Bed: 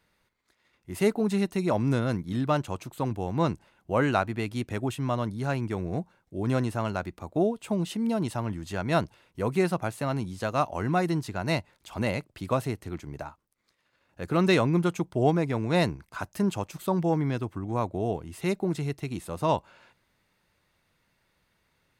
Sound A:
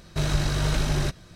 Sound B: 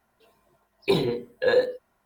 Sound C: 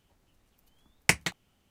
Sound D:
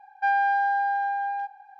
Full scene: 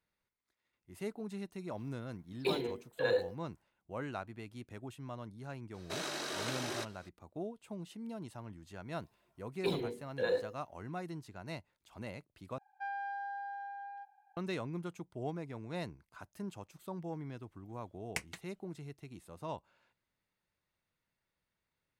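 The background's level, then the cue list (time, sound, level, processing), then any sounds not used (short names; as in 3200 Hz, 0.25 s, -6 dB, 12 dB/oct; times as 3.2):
bed -16.5 dB
1.57 add B -9 dB + low shelf 220 Hz -9 dB
5.74 add A -7.5 dB + HPF 290 Hz 24 dB/oct
8.76 add B -12 dB
12.58 replace with D -17.5 dB
17.07 add C -16 dB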